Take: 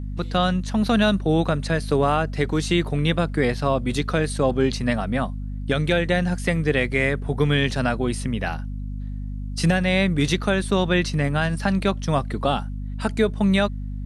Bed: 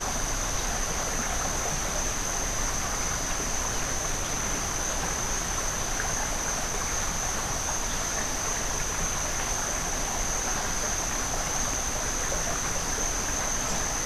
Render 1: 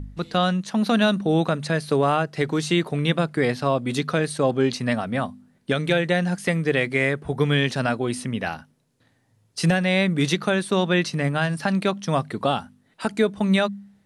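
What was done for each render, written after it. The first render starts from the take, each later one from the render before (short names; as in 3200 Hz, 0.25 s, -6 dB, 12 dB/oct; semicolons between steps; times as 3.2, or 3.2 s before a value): de-hum 50 Hz, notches 5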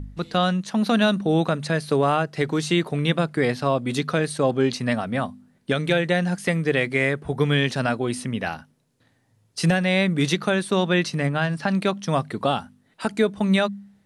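11.27–11.71 air absorption 58 m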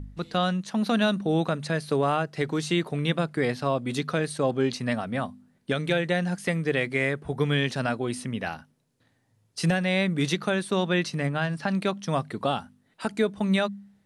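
gain -4 dB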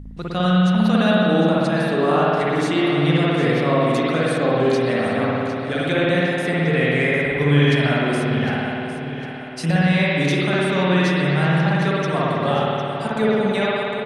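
on a send: feedback echo 0.755 s, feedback 47%, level -11.5 dB; on the sum: spring tank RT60 2.6 s, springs 55 ms, chirp 75 ms, DRR -7 dB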